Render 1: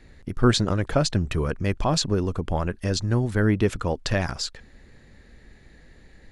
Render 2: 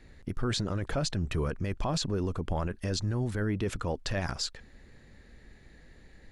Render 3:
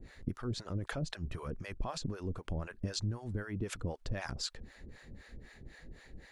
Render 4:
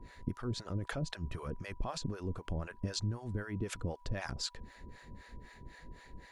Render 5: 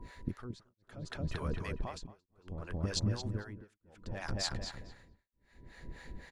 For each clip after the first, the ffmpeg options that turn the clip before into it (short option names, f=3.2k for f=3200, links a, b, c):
-af "alimiter=limit=-18.5dB:level=0:latency=1:release=15,volume=-3.5dB"
-filter_complex "[0:a]acompressor=threshold=-37dB:ratio=5,acrossover=split=550[a][b];[a]aeval=exprs='val(0)*(1-1/2+1/2*cos(2*PI*3.9*n/s))':c=same[c];[b]aeval=exprs='val(0)*(1-1/2-1/2*cos(2*PI*3.9*n/s))':c=same[d];[c][d]amix=inputs=2:normalize=0,volume=6.5dB"
-af "aeval=exprs='val(0)+0.000891*sin(2*PI*980*n/s)':c=same"
-filter_complex "[0:a]asplit=2[a][b];[b]adelay=225,lowpass=f=3k:p=1,volume=-3dB,asplit=2[c][d];[d]adelay=225,lowpass=f=3k:p=1,volume=0.41,asplit=2[e][f];[f]adelay=225,lowpass=f=3k:p=1,volume=0.41,asplit=2[g][h];[h]adelay=225,lowpass=f=3k:p=1,volume=0.41,asplit=2[i][j];[j]adelay=225,lowpass=f=3k:p=1,volume=0.41[k];[a][c][e][g][i][k]amix=inputs=6:normalize=0,tremolo=f=0.66:d=1,volume=2.5dB"